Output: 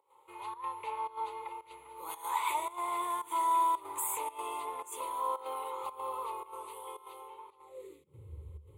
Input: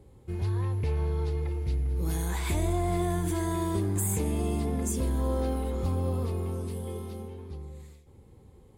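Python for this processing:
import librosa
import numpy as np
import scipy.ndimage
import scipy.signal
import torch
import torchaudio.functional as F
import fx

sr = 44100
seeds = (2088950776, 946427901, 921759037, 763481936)

y = fx.volume_shaper(x, sr, bpm=112, per_beat=1, depth_db=-15, release_ms=98.0, shape='slow start')
y = fx.filter_sweep_highpass(y, sr, from_hz=890.0, to_hz=74.0, start_s=7.64, end_s=8.33, q=6.4)
y = fx.fixed_phaser(y, sr, hz=1100.0, stages=8)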